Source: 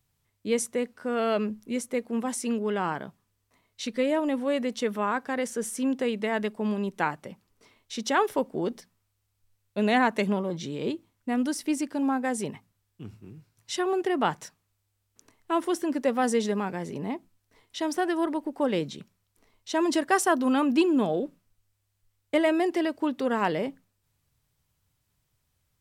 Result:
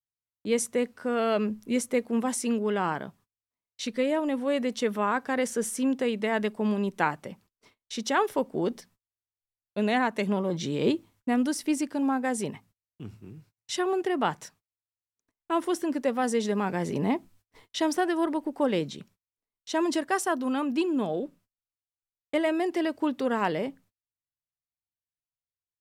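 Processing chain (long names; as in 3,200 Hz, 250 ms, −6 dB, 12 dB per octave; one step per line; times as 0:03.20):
speech leveller 0.5 s
noise gate −56 dBFS, range −32 dB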